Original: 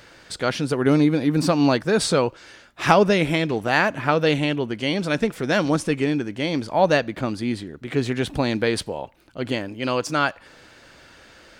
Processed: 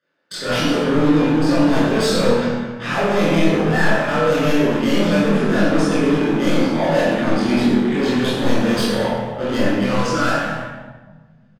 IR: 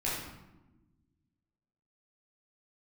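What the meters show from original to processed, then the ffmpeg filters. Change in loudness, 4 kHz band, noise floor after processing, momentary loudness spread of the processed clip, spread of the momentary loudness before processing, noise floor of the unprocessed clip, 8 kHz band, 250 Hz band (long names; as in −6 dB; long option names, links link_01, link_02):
+4.0 dB, +3.0 dB, −49 dBFS, 7 LU, 9 LU, −50 dBFS, +2.0 dB, +6.0 dB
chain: -filter_complex "[0:a]agate=range=-38dB:threshold=-40dB:ratio=16:detection=peak,highpass=frequency=170:width=0.5412,highpass=frequency=170:width=1.3066,bandreject=frequency=60:width_type=h:width=6,bandreject=frequency=120:width_type=h:width=6,bandreject=frequency=180:width_type=h:width=6,bandreject=frequency=240:width_type=h:width=6,bandreject=frequency=300:width_type=h:width=6,areverse,acompressor=threshold=-29dB:ratio=4,areverse,asoftclip=type=tanh:threshold=-26.5dB,adynamicsmooth=sensitivity=6.5:basefreq=4600,volume=33.5dB,asoftclip=hard,volume=-33.5dB,asplit=2[link_01][link_02];[link_02]adelay=25,volume=-3dB[link_03];[link_01][link_03]amix=inputs=2:normalize=0,asplit=2[link_04][link_05];[link_05]adelay=210,highpass=300,lowpass=3400,asoftclip=type=hard:threshold=-38dB,volume=-9dB[link_06];[link_04][link_06]amix=inputs=2:normalize=0[link_07];[1:a]atrim=start_sample=2205,asetrate=30429,aresample=44100[link_08];[link_07][link_08]afir=irnorm=-1:irlink=0,volume=8dB"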